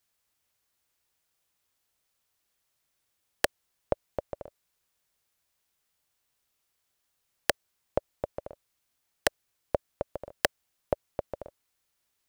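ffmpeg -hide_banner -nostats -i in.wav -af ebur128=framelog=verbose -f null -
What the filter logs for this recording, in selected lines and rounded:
Integrated loudness:
  I:         -34.9 LUFS
  Threshold: -45.3 LUFS
Loudness range:
  LRA:         7.6 LU
  Threshold: -58.2 LUFS
  LRA low:   -43.5 LUFS
  LRA high:  -35.9 LUFS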